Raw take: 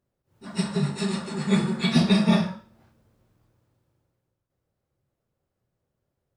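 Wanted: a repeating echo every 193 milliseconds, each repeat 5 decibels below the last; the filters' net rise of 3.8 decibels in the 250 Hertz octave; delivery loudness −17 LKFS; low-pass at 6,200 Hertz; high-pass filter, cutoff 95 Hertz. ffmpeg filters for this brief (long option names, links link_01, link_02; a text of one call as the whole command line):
ffmpeg -i in.wav -af "highpass=95,lowpass=6200,equalizer=frequency=250:width_type=o:gain=5.5,aecho=1:1:193|386|579|772|965|1158|1351:0.562|0.315|0.176|0.0988|0.0553|0.031|0.0173,volume=2.5dB" out.wav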